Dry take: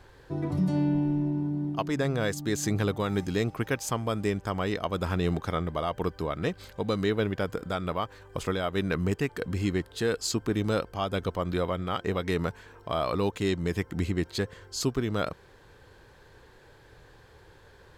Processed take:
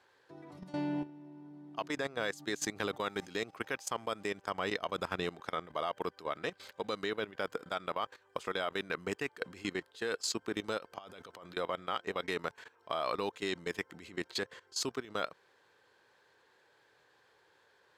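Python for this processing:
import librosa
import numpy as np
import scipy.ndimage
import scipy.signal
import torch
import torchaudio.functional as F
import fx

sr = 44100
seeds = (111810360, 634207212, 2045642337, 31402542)

y = fx.low_shelf(x, sr, hz=130.0, db=6.5, at=(4.49, 5.24))
y = fx.over_compress(y, sr, threshold_db=-33.0, ratio=-1.0, at=(10.77, 11.57))
y = fx.weighting(y, sr, curve='A')
y = fx.level_steps(y, sr, step_db=17)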